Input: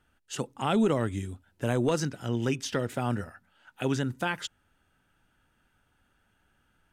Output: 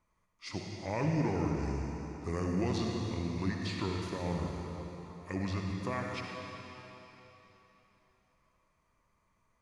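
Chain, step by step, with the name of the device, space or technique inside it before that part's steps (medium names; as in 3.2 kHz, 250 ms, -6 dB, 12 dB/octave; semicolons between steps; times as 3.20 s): slowed and reverbed (tape speed -28%; reverberation RT60 3.6 s, pre-delay 51 ms, DRR 0 dB); trim -7.5 dB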